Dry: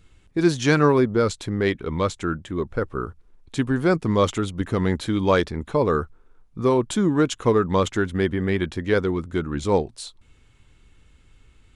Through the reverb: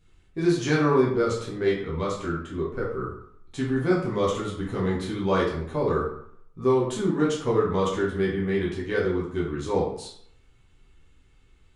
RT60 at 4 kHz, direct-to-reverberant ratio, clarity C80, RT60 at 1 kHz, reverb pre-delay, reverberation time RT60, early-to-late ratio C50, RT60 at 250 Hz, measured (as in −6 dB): 0.45 s, −5.5 dB, 8.0 dB, 0.70 s, 7 ms, 0.65 s, 4.0 dB, 0.65 s